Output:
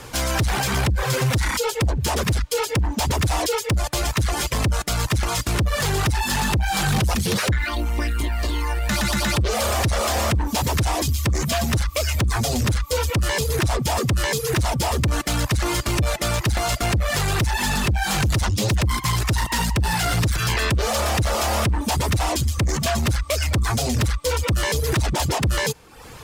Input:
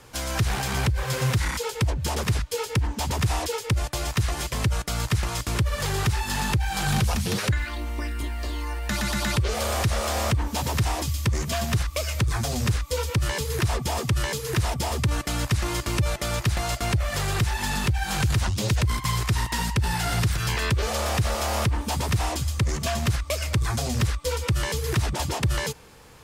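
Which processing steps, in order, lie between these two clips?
reverb removal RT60 0.66 s; in parallel at -0.5 dB: peak limiter -26 dBFS, peak gain reduction 11 dB; on the sum: saturation -21.5 dBFS, distortion -12 dB; trim +5.5 dB

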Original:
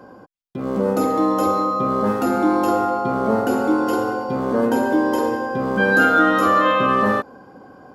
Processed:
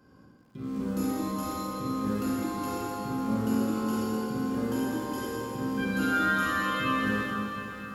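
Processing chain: amplifier tone stack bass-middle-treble 6-0-2; echo that smears into a reverb 593 ms, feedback 49%, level -13 dB; reverberation RT60 2.2 s, pre-delay 7 ms, DRR -4.5 dB; bit-crushed delay 258 ms, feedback 55%, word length 10-bit, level -11 dB; trim +5 dB

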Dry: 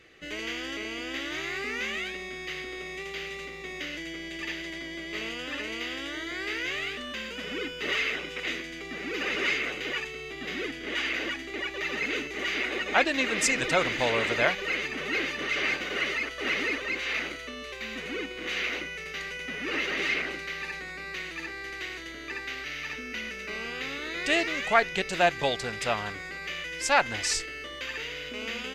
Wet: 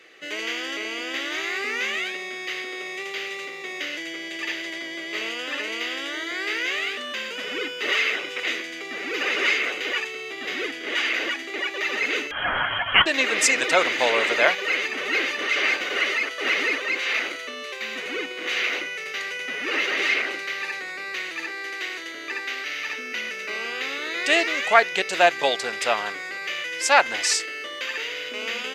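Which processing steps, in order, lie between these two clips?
high-pass 380 Hz 12 dB/octave; 12.31–13.06 s: frequency inversion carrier 3.6 kHz; trim +6 dB

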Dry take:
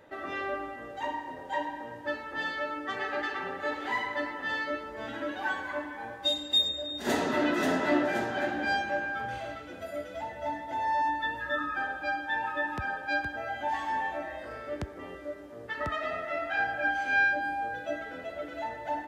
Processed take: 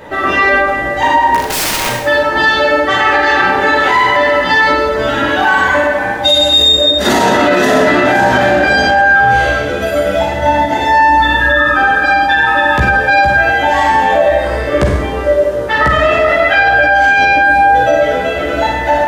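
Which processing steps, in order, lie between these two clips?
chorus voices 6, 0.27 Hz, delay 15 ms, depth 1.2 ms; 1.34–1.89 s: integer overflow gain 38.5 dB; Schroeder reverb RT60 0.77 s, combs from 32 ms, DRR 0 dB; loudness maximiser +26.5 dB; trim -1 dB

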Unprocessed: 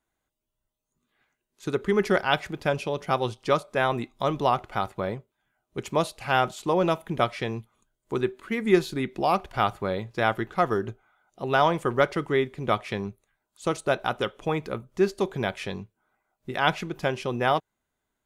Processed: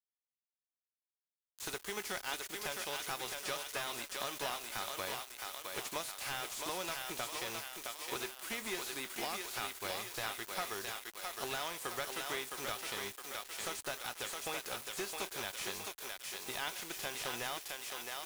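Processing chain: formants flattened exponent 0.6; high-pass 64 Hz 12 dB/octave; pre-emphasis filter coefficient 0.8; compression 6:1, threshold -43 dBFS, peak gain reduction 17 dB; on a send: thinning echo 664 ms, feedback 53%, high-pass 320 Hz, level -4.5 dB; on the sum: companded quantiser 4-bit; peaking EQ 150 Hz -14.5 dB 1.5 oct; slew-rate limiter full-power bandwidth 26 Hz; trim +8 dB

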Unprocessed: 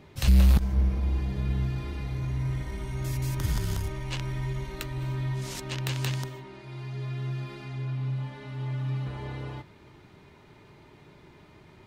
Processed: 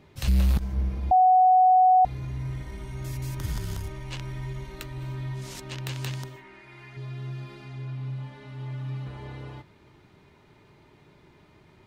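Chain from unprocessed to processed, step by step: 1.11–2.05 s: bleep 742 Hz -11 dBFS; 6.36–6.97 s: graphic EQ 125/500/2000/4000 Hz -10/-4/+9/-5 dB; trim -3 dB

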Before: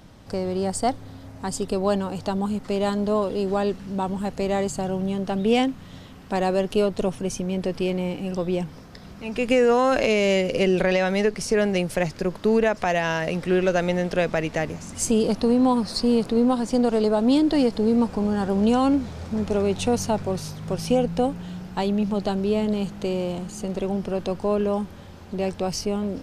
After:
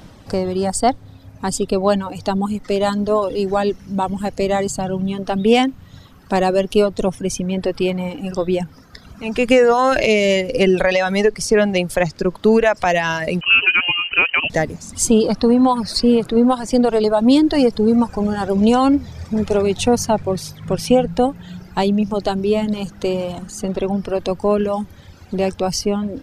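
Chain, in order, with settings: 13.41–14.50 s: frequency inversion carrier 3 kHz; reverb removal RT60 1.7 s; trim +7.5 dB

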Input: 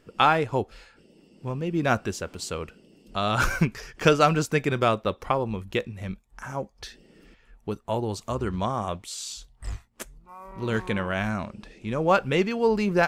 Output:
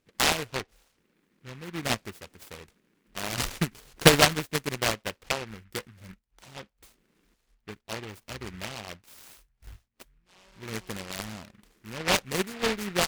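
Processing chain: Chebyshev shaper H 5 -19 dB, 7 -15 dB, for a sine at -5.5 dBFS; 3.71–4.25 s: transient shaper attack +8 dB, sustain +12 dB; delay time shaken by noise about 1.7 kHz, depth 0.24 ms; trim -4.5 dB

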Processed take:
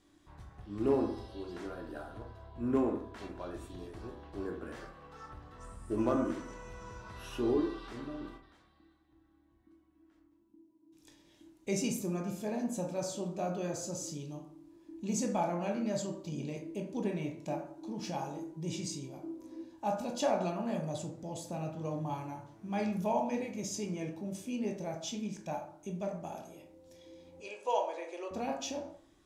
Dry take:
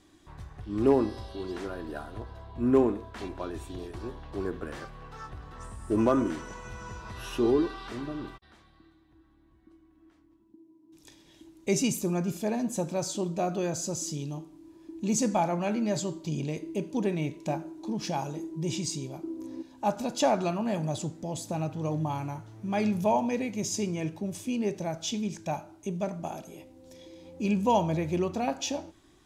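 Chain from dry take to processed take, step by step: 27.40–28.31 s: elliptic band-pass 450–9500 Hz, stop band 40 dB; reverberation RT60 0.55 s, pre-delay 12 ms, DRR 2 dB; trim -8 dB

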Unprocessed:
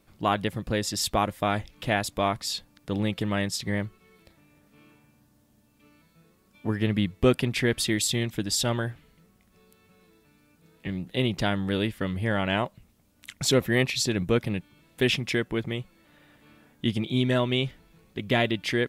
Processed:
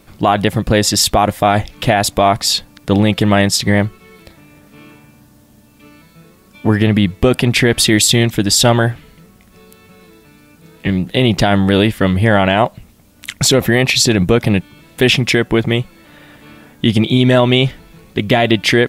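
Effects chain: dynamic bell 730 Hz, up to +6 dB, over -43 dBFS, Q 3; loudness maximiser +17 dB; trim -1 dB

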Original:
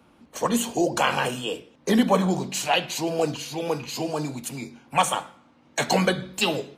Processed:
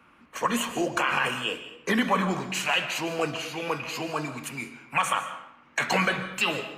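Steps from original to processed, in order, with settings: high-order bell 1.7 kHz +11.5 dB; peak limiter -8 dBFS, peak gain reduction 9.5 dB; reverberation RT60 0.70 s, pre-delay 100 ms, DRR 11 dB; trim -5 dB

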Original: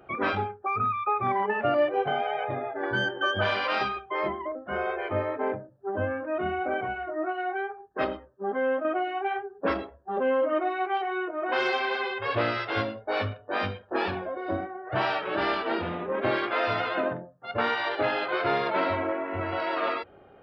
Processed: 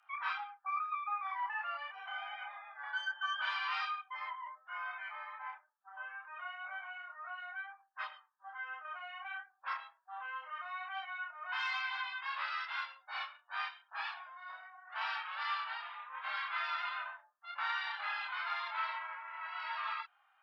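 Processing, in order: steep high-pass 910 Hz 48 dB/octave; frequency shift -13 Hz; chorus voices 2, 0.25 Hz, delay 28 ms, depth 4.1 ms; trim -4.5 dB

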